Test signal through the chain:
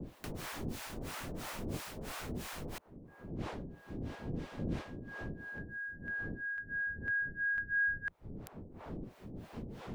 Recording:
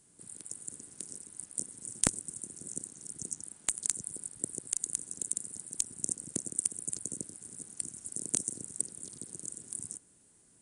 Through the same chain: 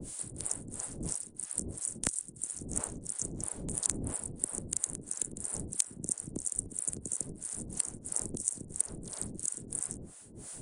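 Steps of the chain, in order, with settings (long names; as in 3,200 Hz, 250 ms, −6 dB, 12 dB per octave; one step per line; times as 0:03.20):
wind on the microphone 260 Hz −45 dBFS
two-band tremolo in antiphase 3 Hz, depth 100%, crossover 620 Hz
multiband upward and downward compressor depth 70%
level +5.5 dB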